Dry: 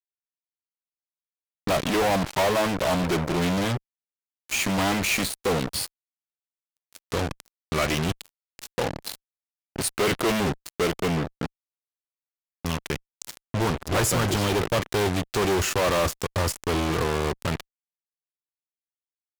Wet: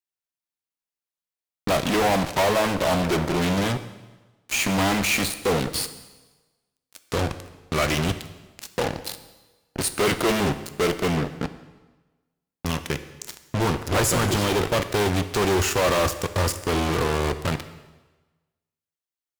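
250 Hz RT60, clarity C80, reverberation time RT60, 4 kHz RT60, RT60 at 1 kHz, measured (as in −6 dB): 1.2 s, 14.0 dB, 1.2 s, 1.1 s, 1.2 s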